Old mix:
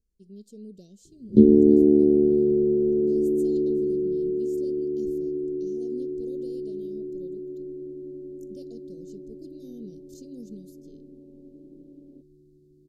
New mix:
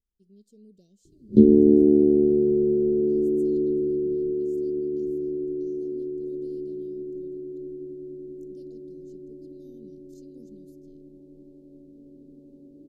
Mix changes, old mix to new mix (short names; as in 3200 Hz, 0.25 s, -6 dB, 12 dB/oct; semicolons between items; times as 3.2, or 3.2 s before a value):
speech -9.5 dB; second sound: entry +1.20 s